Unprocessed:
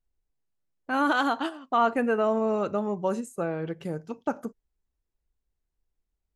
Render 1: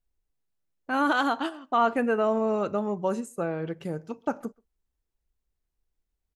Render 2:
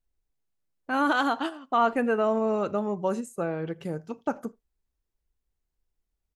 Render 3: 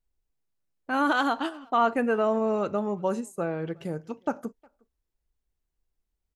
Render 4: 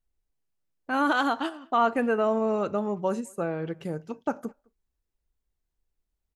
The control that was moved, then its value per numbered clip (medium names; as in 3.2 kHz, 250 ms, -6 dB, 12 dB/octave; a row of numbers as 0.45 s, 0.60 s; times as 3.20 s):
speakerphone echo, time: 130 ms, 80 ms, 360 ms, 210 ms